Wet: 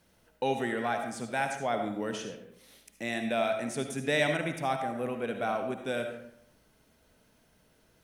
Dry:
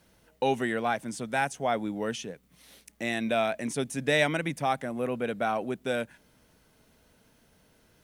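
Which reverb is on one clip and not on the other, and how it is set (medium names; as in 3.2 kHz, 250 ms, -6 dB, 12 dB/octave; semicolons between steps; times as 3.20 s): algorithmic reverb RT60 0.74 s, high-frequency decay 0.6×, pre-delay 30 ms, DRR 5 dB; trim -3.5 dB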